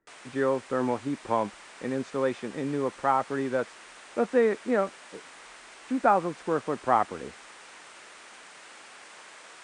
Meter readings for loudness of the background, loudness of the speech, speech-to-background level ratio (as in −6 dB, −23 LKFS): −47.0 LKFS, −28.5 LKFS, 18.5 dB